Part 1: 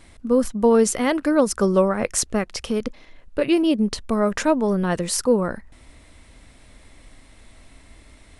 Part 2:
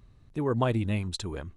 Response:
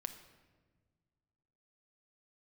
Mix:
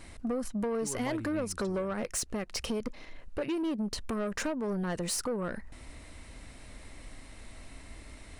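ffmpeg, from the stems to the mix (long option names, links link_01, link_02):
-filter_complex "[0:a]acompressor=threshold=-26dB:ratio=10,asoftclip=type=tanh:threshold=-27.5dB,volume=0.5dB,asplit=2[link_01][link_02];[1:a]adelay=450,volume=-4.5dB[link_03];[link_02]apad=whole_len=88985[link_04];[link_03][link_04]sidechaincompress=threshold=-40dB:ratio=8:attack=16:release=947[link_05];[link_01][link_05]amix=inputs=2:normalize=0,bandreject=frequency=3400:width=17"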